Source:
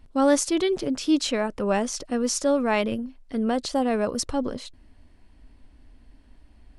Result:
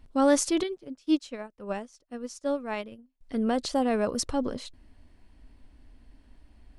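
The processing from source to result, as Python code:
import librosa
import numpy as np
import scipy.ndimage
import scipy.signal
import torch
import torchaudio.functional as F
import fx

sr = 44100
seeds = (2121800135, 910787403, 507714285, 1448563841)

y = fx.upward_expand(x, sr, threshold_db=-36.0, expansion=2.5, at=(0.63, 3.21))
y = F.gain(torch.from_numpy(y), -2.0).numpy()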